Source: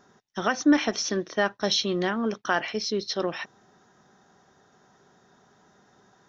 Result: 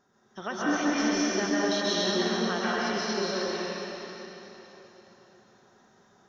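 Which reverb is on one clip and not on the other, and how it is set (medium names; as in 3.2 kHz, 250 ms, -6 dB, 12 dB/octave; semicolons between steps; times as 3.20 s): plate-style reverb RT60 3.7 s, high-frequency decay 0.95×, pre-delay 115 ms, DRR -8.5 dB; trim -10 dB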